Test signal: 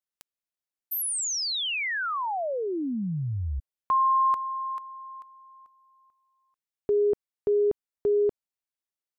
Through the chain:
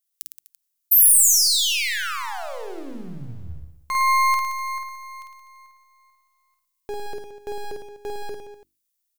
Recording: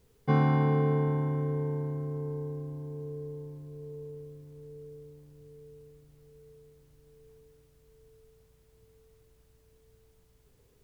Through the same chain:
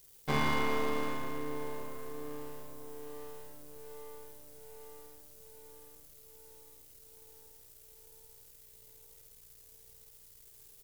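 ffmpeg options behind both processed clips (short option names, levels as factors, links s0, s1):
-filter_complex "[0:a]aeval=exprs='if(lt(val(0),0),0.251*val(0),val(0))':c=same,crystalizer=i=9.5:c=0,bandreject=f=50:t=h:w=6,bandreject=f=100:t=h:w=6,bandreject=f=150:t=h:w=6,bandreject=f=200:t=h:w=6,bandreject=f=250:t=h:w=6,bandreject=f=300:t=h:w=6,bandreject=f=350:t=h:w=6,asplit=2[s0][s1];[s1]aecho=0:1:50|107.5|173.6|249.7|337.1:0.631|0.398|0.251|0.158|0.1[s2];[s0][s2]amix=inputs=2:normalize=0,volume=0.562"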